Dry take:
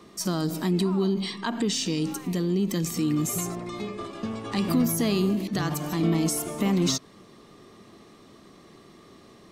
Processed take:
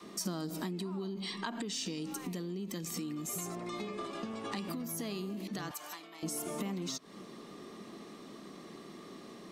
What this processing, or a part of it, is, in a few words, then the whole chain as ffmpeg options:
serial compression, peaks first: -filter_complex "[0:a]acompressor=threshold=-32dB:ratio=6,acompressor=threshold=-40dB:ratio=1.5,lowshelf=f=140:t=q:w=1.5:g=-9.5,asettb=1/sr,asplit=3[a][b][c];[a]atrim=end=5.714[d];[b]atrim=start=5.71:end=6.23,asetpts=PTS-STARTPTS,afade=t=in:d=0.004:c=qsin,afade=t=out:st=0.516:d=0.004:c=qsin,highpass=950[e];[c]atrim=start=6.226[f];[d][e]acrossfade=d=0.004:c1=hsin:c2=qsin[g];[g][f]acrossfade=d=0.004:c1=qsin:c2=hsin,adynamicequalizer=threshold=0.00447:dfrequency=230:dqfactor=0.85:tfrequency=230:tqfactor=0.85:attack=5:release=100:ratio=0.375:range=2.5:mode=cutabove:tftype=bell,volume=1dB"

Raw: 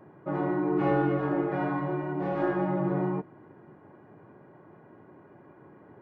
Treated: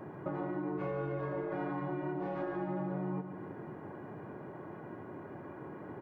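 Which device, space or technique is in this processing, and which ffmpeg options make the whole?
serial compression, peaks first: -filter_complex "[0:a]asettb=1/sr,asplit=3[a][b][c];[a]atrim=end=0.764[d];[b]atrim=start=0.76:end=1.54,asetpts=PTS-STARTPTS,afade=t=in:d=0.004:c=qsin,afade=t=out:st=0.776:d=0.004:c=qsin,aecho=1:1:1.9:0.63,atrim=end_sample=34398[e];[c]atrim=start=1.536[f];[d][e]acrossfade=d=0.004:c1=hsin:c2=qsin[g];[g][f]acrossfade=d=0.004:c1=qsin:c2=hsin,acompressor=threshold=-36dB:ratio=6,acompressor=threshold=-45dB:ratio=2,aecho=1:1:145|290|435|580|725|870:0.316|0.161|0.0823|0.0419|0.0214|0.0109,volume=6.5dB"

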